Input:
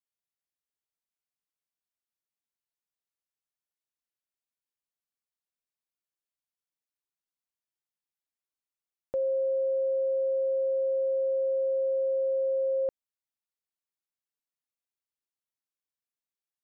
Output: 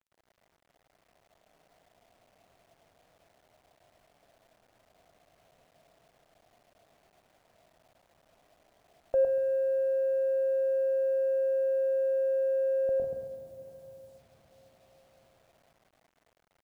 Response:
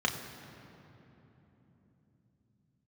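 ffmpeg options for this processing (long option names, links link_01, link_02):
-filter_complex "[0:a]aeval=exprs='val(0)+0.5*0.00266*sgn(val(0))':channel_layout=same,agate=range=-8dB:threshold=-58dB:ratio=16:detection=peak,acrossover=split=130[link_01][link_02];[link_01]acontrast=23[link_03];[link_02]asoftclip=type=hard:threshold=-34dB[link_04];[link_03][link_04]amix=inputs=2:normalize=0,aecho=1:1:107.9|151.6:0.631|0.282,dynaudnorm=framelen=110:gausssize=21:maxgain=4.5dB,asplit=2[link_05][link_06];[1:a]atrim=start_sample=2205,lowshelf=frequency=410:gain=8.5,adelay=129[link_07];[link_06][link_07]afir=irnorm=-1:irlink=0,volume=-20dB[link_08];[link_05][link_08]amix=inputs=2:normalize=0,alimiter=level_in=5dB:limit=-24dB:level=0:latency=1,volume=-5dB,lowpass=frequency=670:width_type=q:width=7,acrusher=bits=10:mix=0:aa=0.000001"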